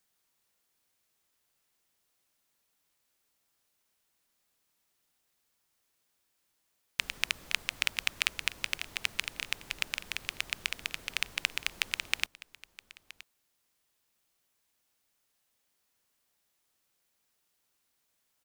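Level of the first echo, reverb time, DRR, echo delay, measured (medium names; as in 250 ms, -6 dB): -19.5 dB, no reverb, no reverb, 971 ms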